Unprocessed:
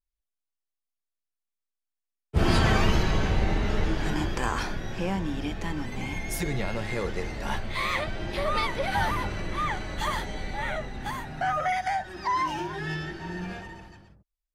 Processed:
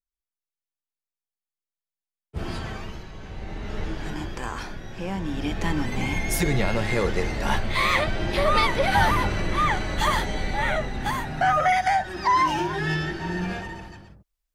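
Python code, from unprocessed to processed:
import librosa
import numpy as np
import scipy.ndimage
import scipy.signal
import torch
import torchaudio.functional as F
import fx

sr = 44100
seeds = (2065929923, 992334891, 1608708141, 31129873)

y = fx.gain(x, sr, db=fx.line((2.36, -8.0), (3.12, -16.5), (3.81, -4.0), (4.92, -4.0), (5.66, 6.5)))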